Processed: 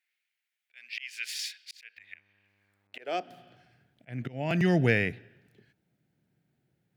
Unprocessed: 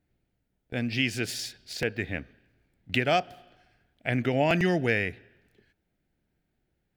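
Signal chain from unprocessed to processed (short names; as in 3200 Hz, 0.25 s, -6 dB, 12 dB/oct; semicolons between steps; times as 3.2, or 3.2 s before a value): auto swell 0.531 s; high-pass sweep 2200 Hz -> 130 Hz, 2.58–3.44; 1.96–2.94 buzz 100 Hz, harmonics 26, -75 dBFS -5 dB/oct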